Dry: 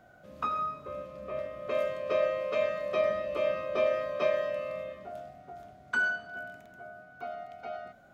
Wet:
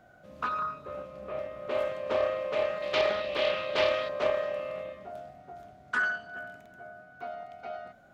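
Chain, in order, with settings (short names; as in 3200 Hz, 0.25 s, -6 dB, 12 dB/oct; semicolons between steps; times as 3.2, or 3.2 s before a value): 2.82–4.09 bell 3500 Hz +15 dB 1.2 oct; Doppler distortion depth 0.31 ms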